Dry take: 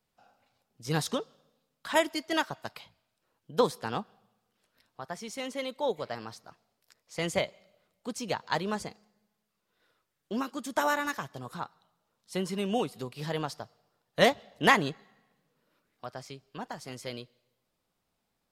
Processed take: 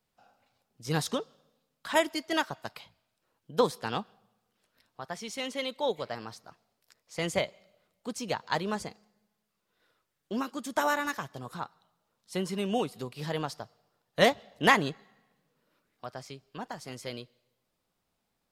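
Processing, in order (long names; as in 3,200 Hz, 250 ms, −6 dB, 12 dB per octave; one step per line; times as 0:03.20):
0:03.72–0:06.03: dynamic equaliser 3,300 Hz, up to +5 dB, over −51 dBFS, Q 1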